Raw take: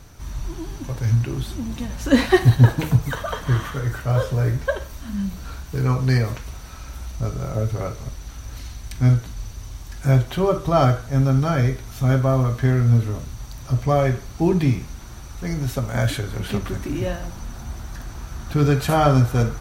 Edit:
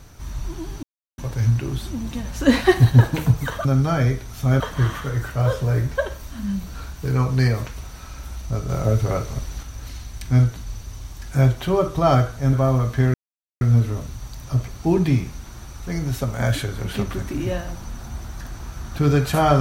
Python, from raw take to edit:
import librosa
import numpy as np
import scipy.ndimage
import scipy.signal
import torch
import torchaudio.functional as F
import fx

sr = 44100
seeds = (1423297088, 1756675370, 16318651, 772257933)

y = fx.edit(x, sr, fx.insert_silence(at_s=0.83, length_s=0.35),
    fx.clip_gain(start_s=7.39, length_s=0.94, db=4.0),
    fx.move(start_s=11.23, length_s=0.95, to_s=3.3),
    fx.insert_silence(at_s=12.79, length_s=0.47),
    fx.cut(start_s=13.86, length_s=0.37), tone=tone)